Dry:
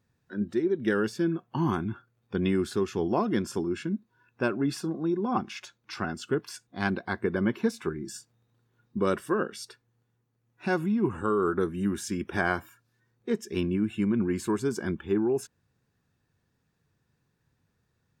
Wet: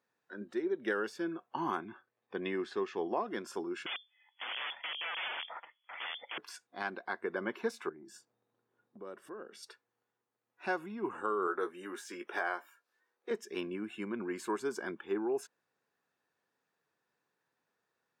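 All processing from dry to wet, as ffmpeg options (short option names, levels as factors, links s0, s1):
-filter_complex "[0:a]asettb=1/sr,asplit=3[s0][s1][s2];[s0]atrim=end=1.804[s3];[s1]atrim=start=1.8:end=3.27,asetpts=PTS-STARTPTS,afade=t=in:d=0.004:c=qsin,afade=t=out:st=1.466:d=0.004:c=qsin,lowpass=4400,equalizer=f=1800:t=o:w=0.27:g=4,bandreject=f=1400:w=6.9[s4];[s2]atrim=start=3.266[s5];[s3][s4]acrossfade=d=0.004:c1=hsin:c2=qsin[s6];[s6][s5]acrossfade=d=0.004:c1=qsin:c2=hsin,asettb=1/sr,asplit=3[s7][s8][s9];[s7]atrim=end=3.864[s10];[s8]atrim=start=3.86:end=6.38,asetpts=PTS-STARTPTS,afade=t=in:d=0.004:c=qsin,afade=t=out:st=2.516:d=0.004:c=qsin,aeval=exprs='(mod(28.2*val(0)+1,2)-1)/28.2':c=same,lowpass=f=3000:t=q:w=0.5098,lowpass=f=3000:t=q:w=0.6013,lowpass=f=3000:t=q:w=0.9,lowpass=f=3000:t=q:w=2.563,afreqshift=-3500[s11];[s9]atrim=start=6.376[s12];[s10][s11]acrossfade=d=0.004:c1=hsin:c2=qsin[s13];[s13][s12]acrossfade=d=0.004:c1=qsin:c2=hsin,asettb=1/sr,asplit=3[s14][s15][s16];[s14]atrim=end=7.894[s17];[s15]atrim=start=7.89:end=9.63,asetpts=PTS-STARTPTS,afade=t=in:d=0.004:c=qsin,afade=t=out:st=1.736:d=0.004:c=qsin,tiltshelf=f=730:g=6,acompressor=threshold=0.01:ratio=3:attack=3.2:release=140:knee=1:detection=peak[s18];[s16]atrim=start=9.626[s19];[s17][s18]acrossfade=d=0.004:c1=hsin:c2=qsin[s20];[s20][s19]acrossfade=d=0.004:c1=qsin:c2=hsin,asettb=1/sr,asplit=3[s21][s22][s23];[s21]atrim=end=11.474[s24];[s22]atrim=start=11.47:end=13.31,asetpts=PTS-STARTPTS,afade=t=in:d=0.004:c=qsin,afade=t=out:st=1.836:d=0.004:c=qsin,highpass=340,deesser=0.85,asplit=2[s25][s26];[s26]adelay=17,volume=0.398[s27];[s25][s27]amix=inputs=2:normalize=0,atrim=end_sample=81144[s28];[s23]atrim=start=13.306[s29];[s24][s28]acrossfade=d=0.004:c1=hsin:c2=qsin[s30];[s30][s29]acrossfade=d=0.004:c1=qsin:c2=hsin,highpass=530,highshelf=f=2700:g=-8.5,alimiter=limit=0.0841:level=0:latency=1:release=461"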